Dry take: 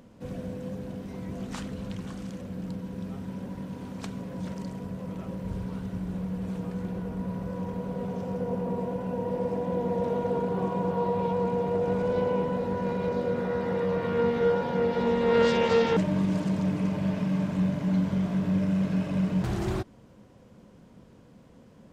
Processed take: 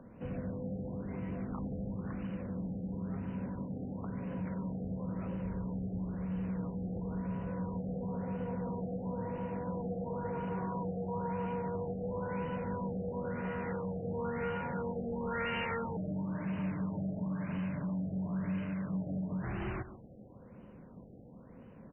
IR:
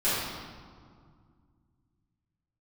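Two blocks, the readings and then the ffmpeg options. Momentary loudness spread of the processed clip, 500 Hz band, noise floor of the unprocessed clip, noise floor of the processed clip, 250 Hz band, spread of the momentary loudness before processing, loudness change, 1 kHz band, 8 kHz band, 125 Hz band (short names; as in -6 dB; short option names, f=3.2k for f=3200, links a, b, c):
4 LU, -12.0 dB, -54 dBFS, -54 dBFS, -7.5 dB, 12 LU, -8.5 dB, -8.0 dB, n/a, -6.5 dB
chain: -filter_complex "[0:a]acrossover=split=170|1100[a][b][c];[a]alimiter=level_in=10dB:limit=-24dB:level=0:latency=1:release=158,volume=-10dB[d];[b]acompressor=threshold=-39dB:ratio=6[e];[d][e][c]amix=inputs=3:normalize=0,asoftclip=type=tanh:threshold=-28.5dB,aecho=1:1:140:0.251,afftfilt=real='re*lt(b*sr/1024,790*pow(3100/790,0.5+0.5*sin(2*PI*0.98*pts/sr)))':imag='im*lt(b*sr/1024,790*pow(3100/790,0.5+0.5*sin(2*PI*0.98*pts/sr)))':win_size=1024:overlap=0.75"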